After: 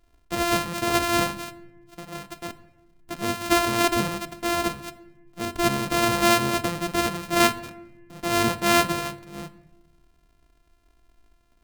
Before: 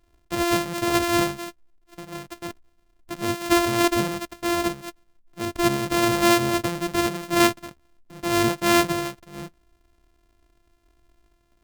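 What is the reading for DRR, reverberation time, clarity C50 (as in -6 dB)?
10.5 dB, 1.0 s, 15.5 dB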